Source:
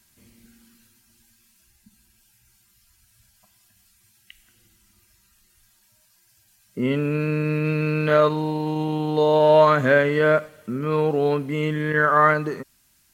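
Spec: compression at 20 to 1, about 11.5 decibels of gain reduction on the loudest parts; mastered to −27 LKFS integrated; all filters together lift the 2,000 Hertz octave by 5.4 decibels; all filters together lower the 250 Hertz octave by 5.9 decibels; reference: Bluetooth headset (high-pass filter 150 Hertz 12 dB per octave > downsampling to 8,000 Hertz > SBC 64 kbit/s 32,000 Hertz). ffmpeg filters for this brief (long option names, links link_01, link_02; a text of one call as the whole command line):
ffmpeg -i in.wav -af "equalizer=frequency=250:width_type=o:gain=-7.5,equalizer=frequency=2000:width_type=o:gain=7.5,acompressor=threshold=-21dB:ratio=20,highpass=150,aresample=8000,aresample=44100" -ar 32000 -c:a sbc -b:a 64k out.sbc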